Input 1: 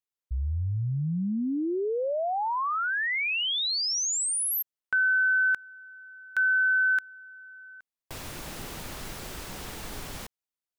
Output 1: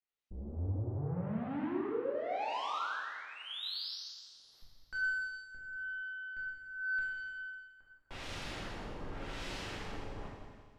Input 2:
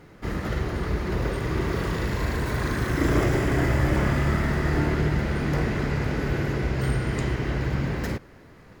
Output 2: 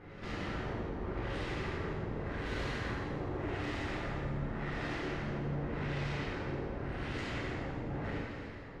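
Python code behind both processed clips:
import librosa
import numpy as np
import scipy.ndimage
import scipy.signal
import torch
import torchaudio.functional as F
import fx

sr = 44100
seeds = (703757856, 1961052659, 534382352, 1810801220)

y = fx.high_shelf(x, sr, hz=2300.0, db=6.5)
y = fx.tube_stage(y, sr, drive_db=39.0, bias=0.5)
y = fx.filter_lfo_lowpass(y, sr, shape='sine', hz=0.87, low_hz=780.0, high_hz=4200.0, q=0.82)
y = fx.echo_heads(y, sr, ms=85, heads='second and third', feedback_pct=50, wet_db=-14)
y = fx.rev_gated(y, sr, seeds[0], gate_ms=440, shape='falling', drr_db=-5.5)
y = y * 10.0 ** (-3.5 / 20.0)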